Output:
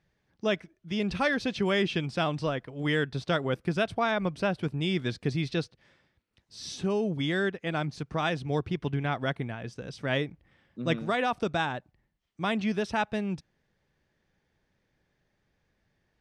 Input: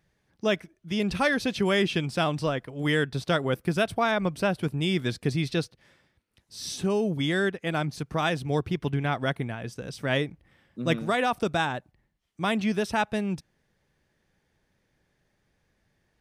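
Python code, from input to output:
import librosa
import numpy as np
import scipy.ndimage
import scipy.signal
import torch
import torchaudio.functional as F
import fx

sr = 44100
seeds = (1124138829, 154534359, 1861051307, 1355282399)

y = scipy.signal.sosfilt(scipy.signal.butter(2, 6100.0, 'lowpass', fs=sr, output='sos'), x)
y = y * librosa.db_to_amplitude(-2.5)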